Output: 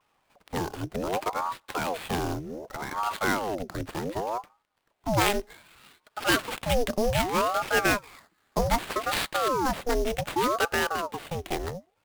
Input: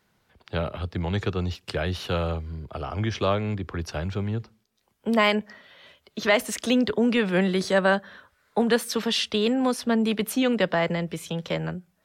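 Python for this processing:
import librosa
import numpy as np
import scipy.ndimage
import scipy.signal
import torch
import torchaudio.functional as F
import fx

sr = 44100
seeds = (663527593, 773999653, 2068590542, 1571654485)

y = fx.sample_hold(x, sr, seeds[0], rate_hz=5800.0, jitter_pct=20)
y = fx.vibrato(y, sr, rate_hz=0.54, depth_cents=38.0)
y = fx.ring_lfo(y, sr, carrier_hz=620.0, swing_pct=70, hz=0.65)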